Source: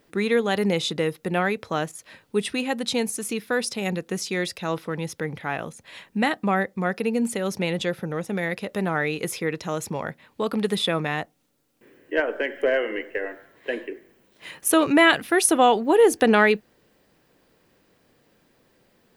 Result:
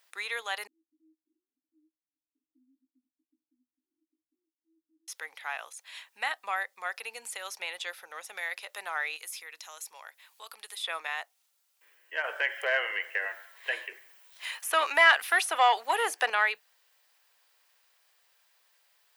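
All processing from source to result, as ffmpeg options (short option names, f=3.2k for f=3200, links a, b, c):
-filter_complex "[0:a]asettb=1/sr,asplit=3[a][b][c];[a]atrim=end=0.674[d];[b]atrim=start=0.67:end=5.08,asetpts=PTS-STARTPTS,afade=t=in:d=0.004:c=qsin,afade=t=out:st=4.406:d=0.004:c=qsin,asuperpass=centerf=280:order=12:qfactor=3.6,asplit=2[e][f];[f]adelay=19,volume=-6dB[g];[e][g]amix=inputs=2:normalize=0,atrim=end_sample=194481[h];[c]atrim=start=5.076[i];[d][h]acrossfade=d=0.004:c1=hsin:c2=qsin[j];[j][i]acrossfade=d=0.004:c1=qsin:c2=hsin,asettb=1/sr,asplit=3[k][l][m];[k]atrim=end=9.164[n];[l]atrim=start=9.16:end=10.84,asetpts=PTS-STARTPTS,afade=t=in:d=0.004:c=qsin,afade=t=out:st=1.676:d=0.004:c=qsin,aemphasis=mode=production:type=cd,bandreject=f=50:t=h:w=6,bandreject=f=100:t=h:w=6,bandreject=f=150:t=h:w=6,bandreject=f=200:t=h:w=6,bandreject=f=250:t=h:w=6,bandreject=f=300:t=h:w=6,acompressor=threshold=-48dB:ratio=1.5:attack=3.2:release=140:knee=1:detection=peak[o];[m]atrim=start=10.836[p];[n][o]acrossfade=d=0.004:c1=hsin:c2=qsin[q];[q][p]acrossfade=d=0.004:c1=qsin:c2=hsin,asettb=1/sr,asplit=3[r][s][t];[r]atrim=end=12.244[u];[s]atrim=start=12.24:end=16.3,asetpts=PTS-STARTPTS,afade=t=in:d=0.004:c=qsin,afade=t=out:st=4.056:d=0.004:c=qsin,highpass=250,acontrast=82[v];[t]atrim=start=16.296[w];[u][v]acrossfade=d=0.004:c1=hsin:c2=qsin[x];[x][w]acrossfade=d=0.004:c1=qsin:c2=hsin,acrossover=split=2600[y][z];[z]acompressor=threshold=-36dB:ratio=4:attack=1:release=60[aa];[y][aa]amix=inputs=2:normalize=0,highpass=f=870:w=0.5412,highpass=f=870:w=1.3066,equalizer=f=1.2k:t=o:w=2.4:g=-7,volume=1.5dB"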